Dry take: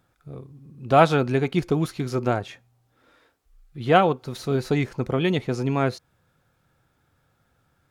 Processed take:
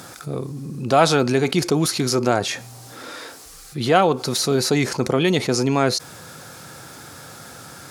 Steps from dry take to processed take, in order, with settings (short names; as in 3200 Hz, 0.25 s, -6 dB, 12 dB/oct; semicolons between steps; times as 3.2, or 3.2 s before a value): Bessel high-pass 180 Hz, order 2; band shelf 7000 Hz +9.5 dB; fast leveller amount 50%